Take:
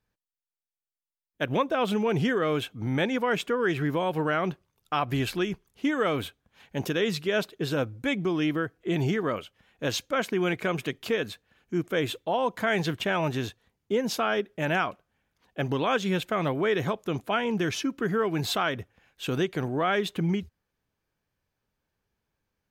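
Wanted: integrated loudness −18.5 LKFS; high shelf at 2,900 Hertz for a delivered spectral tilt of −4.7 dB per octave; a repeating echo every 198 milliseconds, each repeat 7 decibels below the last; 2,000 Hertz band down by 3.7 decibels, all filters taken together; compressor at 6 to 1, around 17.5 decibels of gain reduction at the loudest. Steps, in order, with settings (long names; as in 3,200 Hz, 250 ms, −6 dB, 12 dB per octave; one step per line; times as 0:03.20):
parametric band 2,000 Hz −8 dB
high-shelf EQ 2,900 Hz +7.5 dB
downward compressor 6 to 1, threshold −42 dBFS
repeating echo 198 ms, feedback 45%, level −7 dB
level +25 dB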